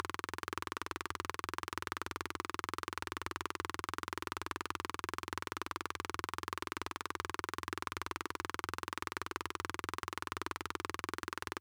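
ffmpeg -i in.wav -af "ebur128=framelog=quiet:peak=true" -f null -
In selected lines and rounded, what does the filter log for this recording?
Integrated loudness:
  I:         -41.3 LUFS
  Threshold: -51.3 LUFS
Loudness range:
  LRA:         0.2 LU
  Threshold: -61.3 LUFS
  LRA low:   -41.4 LUFS
  LRA high:  -41.2 LUFS
True peak:
  Peak:      -16.6 dBFS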